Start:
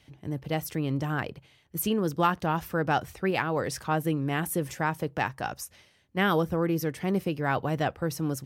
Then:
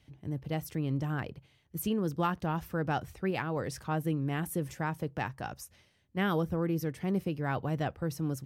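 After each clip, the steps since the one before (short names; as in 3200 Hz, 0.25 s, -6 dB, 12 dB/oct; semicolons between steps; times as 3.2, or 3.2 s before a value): low shelf 260 Hz +7.5 dB; gain -7.5 dB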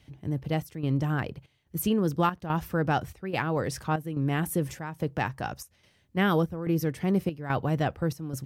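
chopper 1.2 Hz, depth 65%, duty 75%; gain +5.5 dB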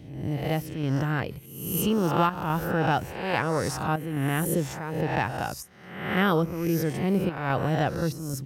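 spectral swells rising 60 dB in 0.84 s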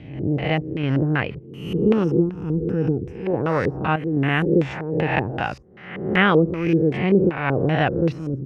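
spectral gain 2.04–3.27, 510–4900 Hz -20 dB; LFO low-pass square 2.6 Hz 410–2500 Hz; gain +4.5 dB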